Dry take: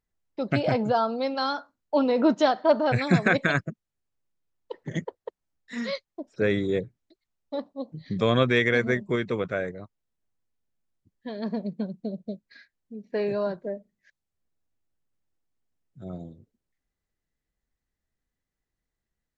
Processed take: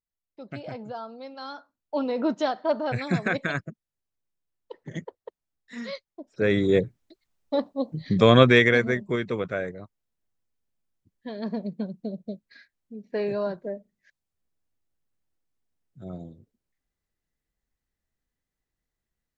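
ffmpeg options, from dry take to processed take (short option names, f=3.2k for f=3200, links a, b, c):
-af "volume=6.5dB,afade=t=in:st=1.35:d=0.66:silence=0.375837,afade=t=in:st=6.28:d=0.52:silence=0.281838,afade=t=out:st=8.45:d=0.45:silence=0.446684"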